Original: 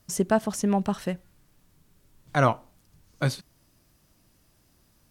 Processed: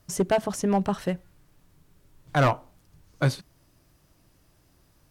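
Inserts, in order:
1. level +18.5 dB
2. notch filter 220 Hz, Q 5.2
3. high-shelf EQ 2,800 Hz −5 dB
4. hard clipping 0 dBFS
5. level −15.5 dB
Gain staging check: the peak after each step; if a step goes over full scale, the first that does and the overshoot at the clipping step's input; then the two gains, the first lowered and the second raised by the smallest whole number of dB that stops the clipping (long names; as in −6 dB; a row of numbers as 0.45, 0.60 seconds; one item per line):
+10.5, +10.5, +9.5, 0.0, −15.5 dBFS
step 1, 9.5 dB
step 1 +8.5 dB, step 5 −5.5 dB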